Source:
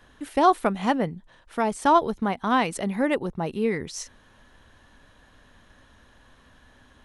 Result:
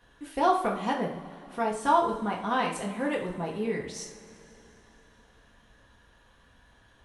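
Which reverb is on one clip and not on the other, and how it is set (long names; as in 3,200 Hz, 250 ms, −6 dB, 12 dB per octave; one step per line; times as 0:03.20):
coupled-rooms reverb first 0.43 s, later 3.5 s, from −20 dB, DRR −2.5 dB
level −8.5 dB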